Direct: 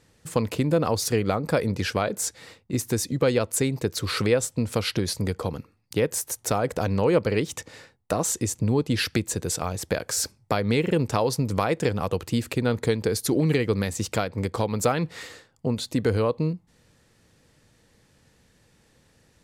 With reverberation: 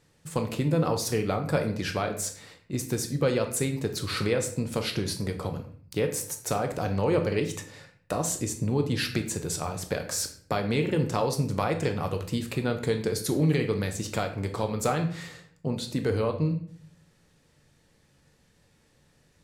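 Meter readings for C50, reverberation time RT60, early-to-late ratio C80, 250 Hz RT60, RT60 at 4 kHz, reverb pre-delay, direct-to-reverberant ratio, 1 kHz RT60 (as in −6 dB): 10.0 dB, 0.50 s, 13.5 dB, 0.75 s, 0.40 s, 5 ms, 4.5 dB, 0.50 s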